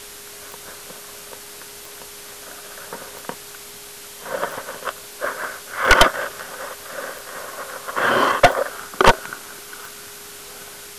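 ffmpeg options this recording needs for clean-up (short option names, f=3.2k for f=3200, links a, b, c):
-af "adeclick=t=4,bandreject=f=410:w=30,afwtdn=0.014"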